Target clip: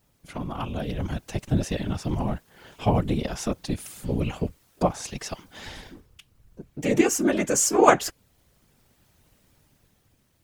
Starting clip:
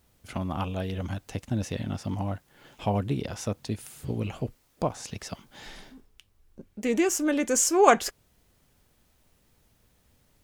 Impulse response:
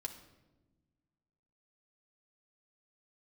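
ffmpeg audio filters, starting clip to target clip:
-af "dynaudnorm=framelen=170:gausssize=11:maxgain=6dB,afftfilt=real='hypot(re,im)*cos(2*PI*random(0))':imag='hypot(re,im)*sin(2*PI*random(1))':win_size=512:overlap=0.75,volume=4.5dB"

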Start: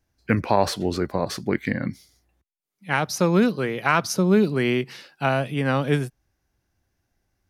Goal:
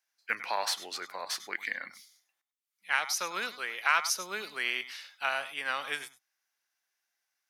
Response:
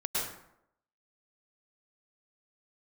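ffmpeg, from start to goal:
-filter_complex "[0:a]highpass=1400[link_01];[1:a]atrim=start_sample=2205,atrim=end_sample=4410[link_02];[link_01][link_02]afir=irnorm=-1:irlink=0"

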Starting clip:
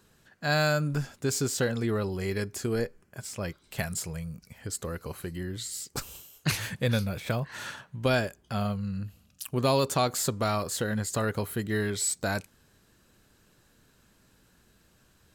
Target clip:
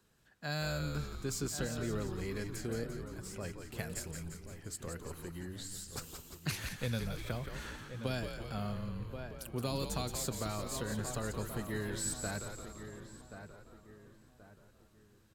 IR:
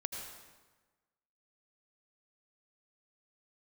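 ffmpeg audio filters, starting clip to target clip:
-filter_complex "[0:a]asplit=2[link_01][link_02];[link_02]adelay=1079,lowpass=frequency=1900:poles=1,volume=-11dB,asplit=2[link_03][link_04];[link_04]adelay=1079,lowpass=frequency=1900:poles=1,volume=0.38,asplit=2[link_05][link_06];[link_06]adelay=1079,lowpass=frequency=1900:poles=1,volume=0.38,asplit=2[link_07][link_08];[link_08]adelay=1079,lowpass=frequency=1900:poles=1,volume=0.38[link_09];[link_03][link_05][link_07][link_09]amix=inputs=4:normalize=0[link_10];[link_01][link_10]amix=inputs=2:normalize=0,acrossover=split=300|3000[link_11][link_12][link_13];[link_12]acompressor=threshold=-29dB:ratio=6[link_14];[link_11][link_14][link_13]amix=inputs=3:normalize=0,asplit=2[link_15][link_16];[link_16]asplit=7[link_17][link_18][link_19][link_20][link_21][link_22][link_23];[link_17]adelay=173,afreqshift=-86,volume=-7dB[link_24];[link_18]adelay=346,afreqshift=-172,volume=-11.7dB[link_25];[link_19]adelay=519,afreqshift=-258,volume=-16.5dB[link_26];[link_20]adelay=692,afreqshift=-344,volume=-21.2dB[link_27];[link_21]adelay=865,afreqshift=-430,volume=-25.9dB[link_28];[link_22]adelay=1038,afreqshift=-516,volume=-30.7dB[link_29];[link_23]adelay=1211,afreqshift=-602,volume=-35.4dB[link_30];[link_24][link_25][link_26][link_27][link_28][link_29][link_30]amix=inputs=7:normalize=0[link_31];[link_15][link_31]amix=inputs=2:normalize=0,volume=-9dB"

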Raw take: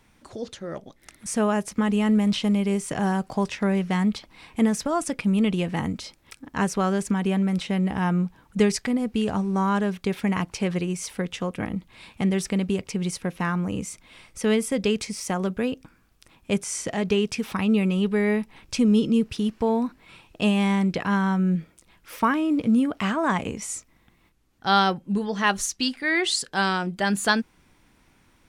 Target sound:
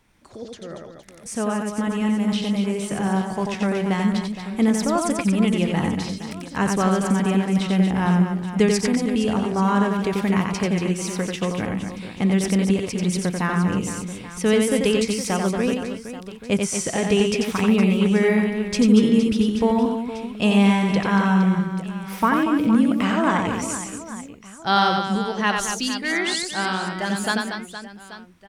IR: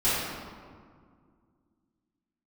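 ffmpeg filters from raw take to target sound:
-af "dynaudnorm=framelen=560:gausssize=13:maxgain=6dB,aecho=1:1:90|234|464.4|833|1423:0.631|0.398|0.251|0.158|0.1,volume=-3dB"

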